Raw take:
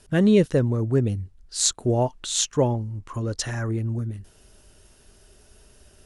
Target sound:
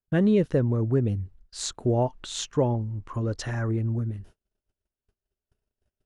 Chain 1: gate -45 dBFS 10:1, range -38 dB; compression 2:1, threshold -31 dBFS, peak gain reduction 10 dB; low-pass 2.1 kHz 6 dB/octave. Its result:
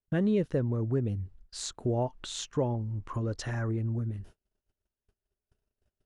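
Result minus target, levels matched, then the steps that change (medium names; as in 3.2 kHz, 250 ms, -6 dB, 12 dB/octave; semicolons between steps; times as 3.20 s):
compression: peak gain reduction +6 dB
change: compression 2:1, threshold -19.5 dBFS, peak gain reduction 4.5 dB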